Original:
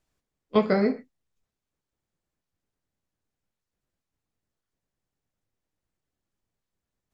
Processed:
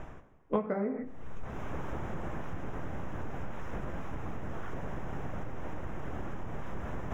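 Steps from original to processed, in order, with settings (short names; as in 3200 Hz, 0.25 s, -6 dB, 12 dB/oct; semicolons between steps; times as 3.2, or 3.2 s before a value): reverse; upward compressor, threshold -23 dBFS; reverse; running mean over 10 samples; low shelf 360 Hz +10 dB; compressor 16:1, threshold -43 dBFS, peak gain reduction 32 dB; bell 1000 Hz +11 dB 2.6 oct; de-hum 95.53 Hz, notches 30; on a send: reverb RT60 1.4 s, pre-delay 3 ms, DRR 18 dB; on the sum: gain +9.5 dB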